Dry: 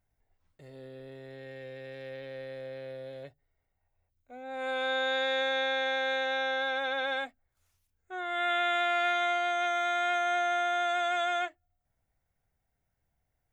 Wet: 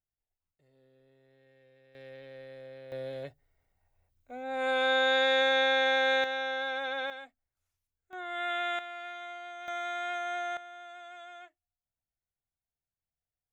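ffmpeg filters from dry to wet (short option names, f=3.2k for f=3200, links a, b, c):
-af "asetnsamples=n=441:p=0,asendcmd='1.95 volume volume -6dB;2.92 volume volume 4dB;6.24 volume volume -2.5dB;7.1 volume volume -11.5dB;8.13 volume volume -4dB;8.79 volume volume -14dB;9.68 volume volume -6dB;10.57 volume volume -18dB',volume=-18.5dB"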